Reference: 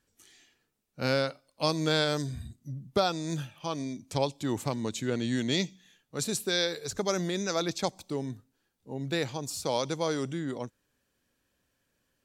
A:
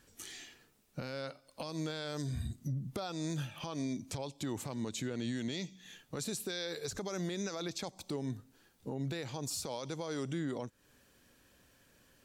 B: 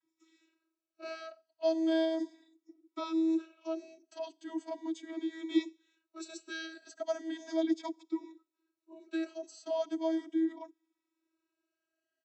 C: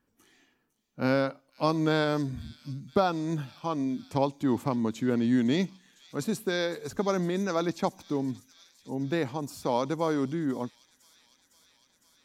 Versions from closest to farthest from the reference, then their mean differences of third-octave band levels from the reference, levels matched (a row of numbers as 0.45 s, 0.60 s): C, A, B; 4.0 dB, 5.0 dB, 15.0 dB